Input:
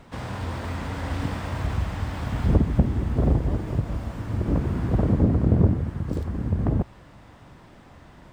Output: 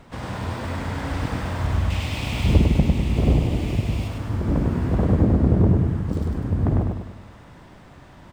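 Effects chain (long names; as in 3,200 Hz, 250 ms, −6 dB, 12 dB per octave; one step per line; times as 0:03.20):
0:01.90–0:04.08: high shelf with overshoot 2,000 Hz +7 dB, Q 3
repeating echo 101 ms, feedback 48%, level −3.5 dB
level +1 dB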